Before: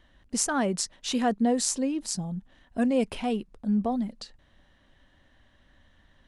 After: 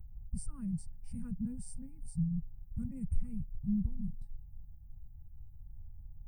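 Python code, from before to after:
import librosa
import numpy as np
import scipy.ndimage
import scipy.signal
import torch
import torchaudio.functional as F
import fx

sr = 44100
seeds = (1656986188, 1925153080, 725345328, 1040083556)

y = x + 10.0 ** (-34.0 / 20.0) * np.sin(2.0 * np.pi * 840.0 * np.arange(len(x)) / sr)
y = scipy.signal.sosfilt(scipy.signal.cheby2(4, 50, [330.0, 8400.0], 'bandstop', fs=sr, output='sos'), y)
y = fx.formant_shift(y, sr, semitones=-3)
y = y * 10.0 ** (15.5 / 20.0)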